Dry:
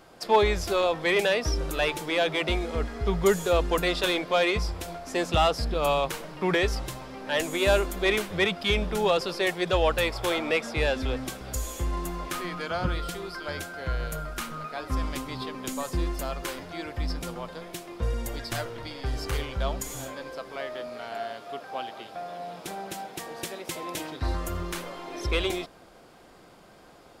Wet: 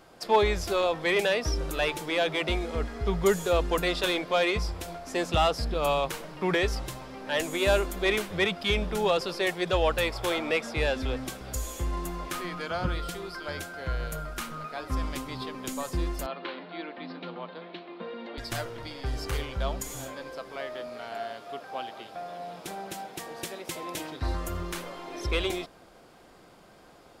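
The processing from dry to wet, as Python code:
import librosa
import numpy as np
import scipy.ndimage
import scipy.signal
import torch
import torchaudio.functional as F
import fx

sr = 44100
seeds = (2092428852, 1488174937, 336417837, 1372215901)

y = fx.cheby1_bandpass(x, sr, low_hz=180.0, high_hz=4200.0, order=5, at=(16.26, 18.38))
y = y * 10.0 ** (-1.5 / 20.0)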